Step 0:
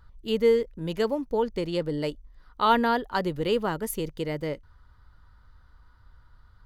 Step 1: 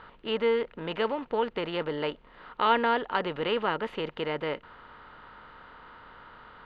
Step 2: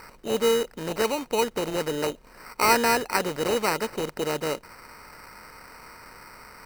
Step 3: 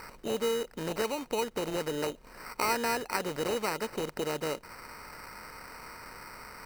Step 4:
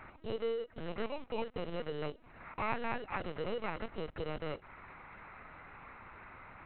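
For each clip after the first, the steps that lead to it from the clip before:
spectral levelling over time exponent 0.6; Chebyshev low-pass 2.8 kHz, order 3; tilt EQ +2.5 dB/octave; trim -3 dB
sample-rate reducer 3.4 kHz, jitter 0%; trim +3.5 dB
compression 2:1, threshold -33 dBFS, peak gain reduction 10 dB
LPC vocoder at 8 kHz pitch kept; trim -5.5 dB

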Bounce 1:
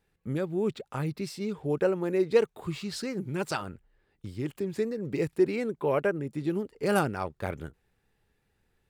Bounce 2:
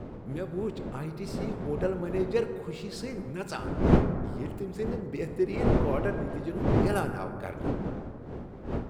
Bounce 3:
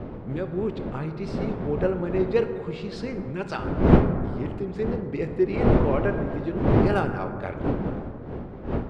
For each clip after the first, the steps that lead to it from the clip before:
wind noise 340 Hz -27 dBFS; plate-style reverb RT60 2.6 s, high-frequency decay 0.3×, DRR 7 dB; trim -5 dB
low-pass 3.8 kHz 12 dB/octave; trim +5 dB

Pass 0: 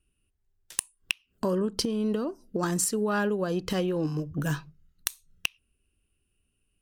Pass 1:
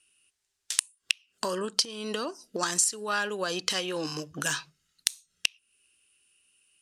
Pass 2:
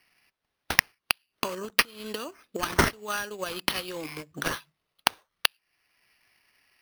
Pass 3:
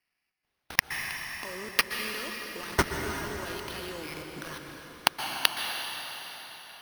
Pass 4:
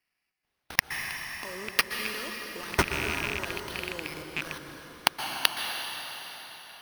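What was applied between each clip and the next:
frequency weighting ITU-R 468; compression 3:1, threshold -32 dBFS, peak gain reduction 15 dB; trim +5.5 dB
transient shaper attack +5 dB, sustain -5 dB; treble shelf 6 kHz +8 dB; sample-rate reducer 7.4 kHz, jitter 0%; trim -4.5 dB
level held to a coarse grid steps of 21 dB; plate-style reverb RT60 4.8 s, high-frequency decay 0.85×, pre-delay 110 ms, DRR 2.5 dB; trim +1 dB
rattle on loud lows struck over -41 dBFS, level -17 dBFS

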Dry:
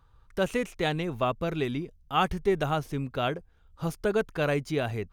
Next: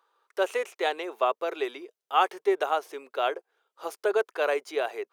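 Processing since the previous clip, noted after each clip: elliptic high-pass 380 Hz, stop band 80 dB; dynamic bell 820 Hz, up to +4 dB, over -39 dBFS, Q 0.8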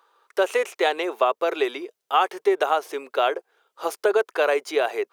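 compression 2.5:1, threshold -26 dBFS, peak gain reduction 7 dB; trim +8.5 dB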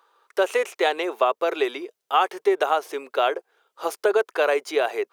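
no audible change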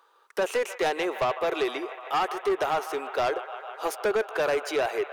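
feedback echo behind a band-pass 152 ms, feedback 85%, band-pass 1.4 kHz, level -16 dB; saturation -20 dBFS, distortion -9 dB

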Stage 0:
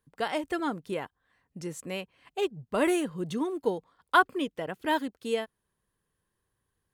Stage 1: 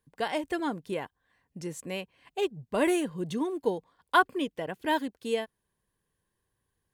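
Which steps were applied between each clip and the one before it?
band-stop 1.3 kHz, Q 7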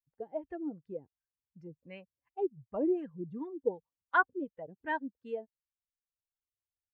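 expander on every frequency bin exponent 1.5; LFO low-pass sine 2.7 Hz 310–1800 Hz; trim -8 dB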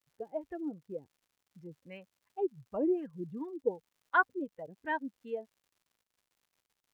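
crackle 160 per s -60 dBFS

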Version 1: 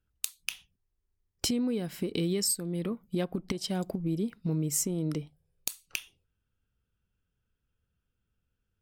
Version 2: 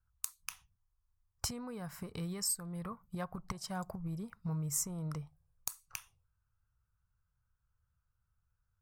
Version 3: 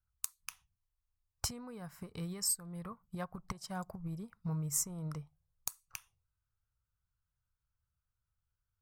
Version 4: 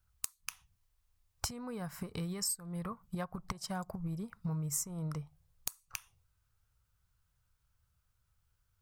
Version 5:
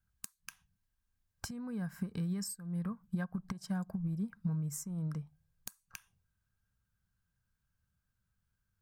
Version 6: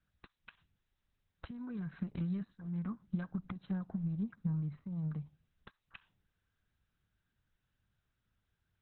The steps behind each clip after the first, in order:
FFT filter 120 Hz 0 dB, 310 Hz -22 dB, 1.1 kHz +5 dB, 3.2 kHz -18 dB, 5.9 kHz -6 dB; trim +1 dB
upward expansion 1.5:1, over -49 dBFS; trim +2 dB
compression 2.5:1, threshold -49 dBFS, peak gain reduction 13.5 dB; trim +10 dB
small resonant body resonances 200/1600 Hz, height 14 dB, ringing for 35 ms; trim -7.5 dB
Opus 6 kbps 48 kHz

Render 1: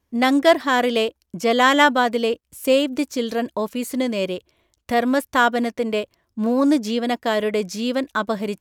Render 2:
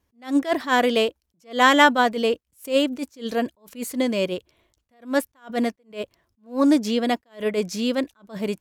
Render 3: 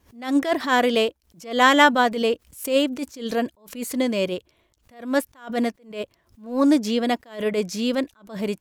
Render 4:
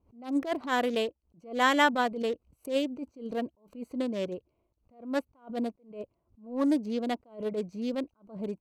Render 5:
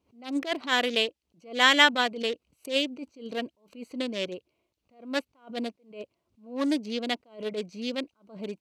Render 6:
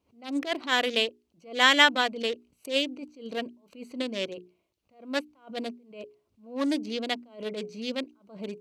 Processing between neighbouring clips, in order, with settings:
attacks held to a fixed rise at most 220 dB/s
swell ahead of each attack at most 140 dB/s
local Wiener filter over 25 samples; trim -8 dB
frequency weighting D
hum notches 60/120/180/240/300/360/420 Hz

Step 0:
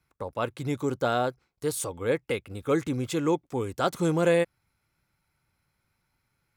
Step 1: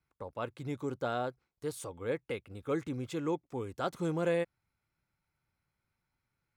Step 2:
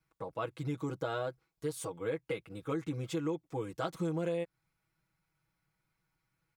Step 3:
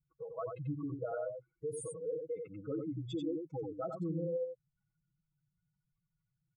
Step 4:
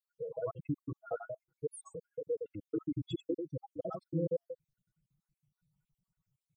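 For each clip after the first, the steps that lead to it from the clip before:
treble shelf 5.2 kHz -7 dB; trim -8 dB
comb 6.2 ms, depth 92%; compression 6:1, threshold -31 dBFS, peak gain reduction 9 dB
spectral contrast enhancement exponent 3.8; delay 90 ms -5 dB; trim -2.5 dB
random holes in the spectrogram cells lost 66%; trim +4.5 dB

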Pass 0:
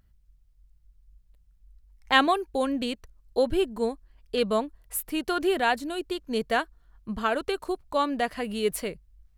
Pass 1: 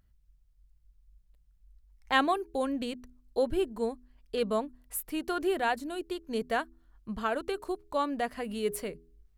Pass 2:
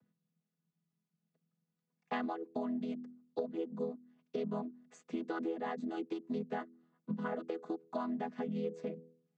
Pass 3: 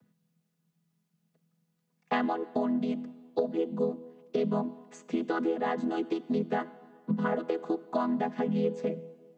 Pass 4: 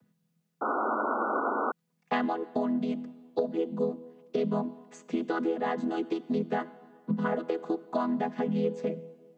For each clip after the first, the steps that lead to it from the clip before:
de-hum 82.73 Hz, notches 5; dynamic bell 3.5 kHz, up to -4 dB, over -42 dBFS, Q 0.79; trim -4 dB
vocoder on a held chord major triad, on E3; compression 10:1, threshold -37 dBFS, peak gain reduction 16.5 dB; trim +3 dB
plate-style reverb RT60 1.8 s, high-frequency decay 0.8×, pre-delay 0 ms, DRR 16.5 dB; trim +8.5 dB
painted sound noise, 0.61–1.72 s, 210–1500 Hz -29 dBFS

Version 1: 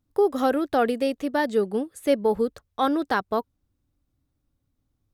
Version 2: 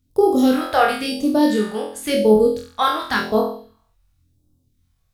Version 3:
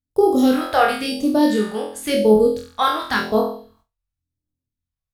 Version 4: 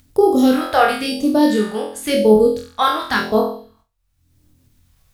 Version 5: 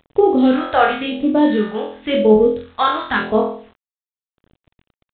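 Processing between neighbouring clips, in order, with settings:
flutter echo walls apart 4 m, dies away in 0.57 s; phase shifter stages 2, 0.94 Hz, lowest notch 260–1900 Hz; trim +7 dB
gate with hold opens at -45 dBFS
upward compressor, threshold -35 dBFS; trim +2 dB
bit crusher 8-bit; G.726 32 kbps 8 kHz

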